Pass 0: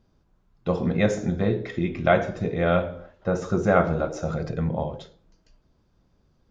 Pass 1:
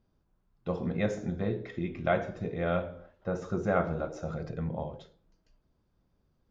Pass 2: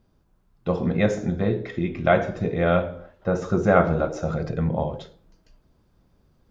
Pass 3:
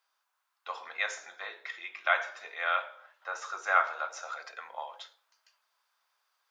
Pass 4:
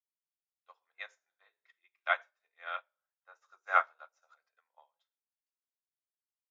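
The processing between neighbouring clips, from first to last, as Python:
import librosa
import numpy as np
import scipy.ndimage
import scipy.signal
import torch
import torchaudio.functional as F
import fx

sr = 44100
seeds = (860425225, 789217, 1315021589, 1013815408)

y1 = fx.high_shelf(x, sr, hz=5500.0, db=-6.0)
y1 = F.gain(torch.from_numpy(y1), -8.0).numpy()
y2 = fx.rider(y1, sr, range_db=10, speed_s=2.0)
y2 = F.gain(torch.from_numpy(y2), 8.5).numpy()
y3 = scipy.signal.sosfilt(scipy.signal.butter(4, 1000.0, 'highpass', fs=sr, output='sos'), y2)
y4 = fx.upward_expand(y3, sr, threshold_db=-46.0, expansion=2.5)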